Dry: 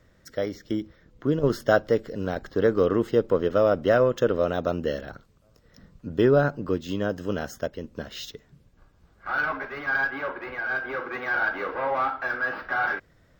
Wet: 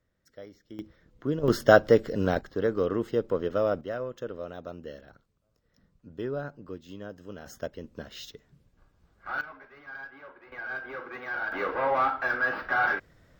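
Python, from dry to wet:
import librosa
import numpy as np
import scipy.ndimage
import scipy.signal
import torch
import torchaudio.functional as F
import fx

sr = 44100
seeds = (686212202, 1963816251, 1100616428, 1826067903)

y = fx.gain(x, sr, db=fx.steps((0.0, -17.0), (0.79, -5.0), (1.48, 3.0), (2.41, -5.5), (3.81, -14.0), (7.46, -5.5), (9.41, -17.0), (10.52, -7.5), (11.52, 0.5)))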